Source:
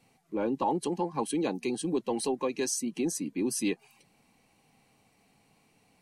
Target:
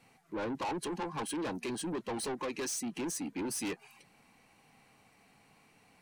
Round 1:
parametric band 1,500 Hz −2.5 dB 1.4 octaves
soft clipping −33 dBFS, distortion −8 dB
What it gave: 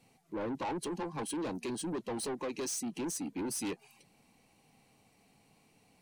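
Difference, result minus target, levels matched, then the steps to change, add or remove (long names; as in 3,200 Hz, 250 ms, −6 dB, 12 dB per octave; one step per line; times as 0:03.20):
2,000 Hz band −3.5 dB
change: parametric band 1,500 Hz +7.5 dB 1.4 octaves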